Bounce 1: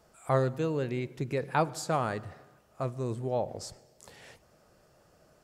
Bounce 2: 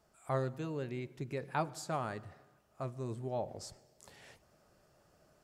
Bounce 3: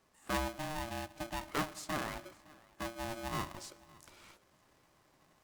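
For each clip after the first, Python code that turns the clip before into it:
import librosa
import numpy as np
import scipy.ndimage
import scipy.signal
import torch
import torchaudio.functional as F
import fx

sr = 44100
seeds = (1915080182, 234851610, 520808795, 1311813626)

y1 = fx.notch(x, sr, hz=490.0, q=12.0)
y1 = fx.rider(y1, sr, range_db=10, speed_s=2.0)
y1 = y1 * 10.0 ** (-6.5 / 20.0)
y2 = y1 + 10.0 ** (-23.0 / 20.0) * np.pad(y1, (int(561 * sr / 1000.0), 0))[:len(y1)]
y2 = y2 * np.sign(np.sin(2.0 * np.pi * 460.0 * np.arange(len(y2)) / sr))
y2 = y2 * 10.0 ** (-1.0 / 20.0)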